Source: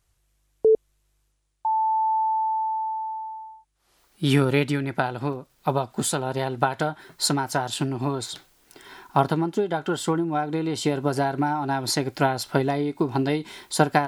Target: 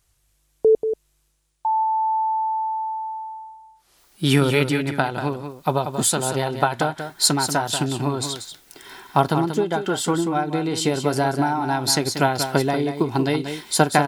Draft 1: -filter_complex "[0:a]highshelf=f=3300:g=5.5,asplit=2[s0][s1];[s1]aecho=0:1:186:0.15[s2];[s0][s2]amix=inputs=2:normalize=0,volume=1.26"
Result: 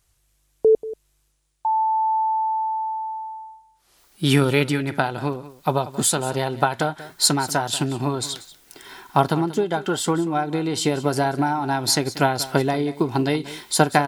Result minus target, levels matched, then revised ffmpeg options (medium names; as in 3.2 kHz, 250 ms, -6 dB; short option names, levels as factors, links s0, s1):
echo-to-direct -8 dB
-filter_complex "[0:a]highshelf=f=3300:g=5.5,asplit=2[s0][s1];[s1]aecho=0:1:186:0.376[s2];[s0][s2]amix=inputs=2:normalize=0,volume=1.26"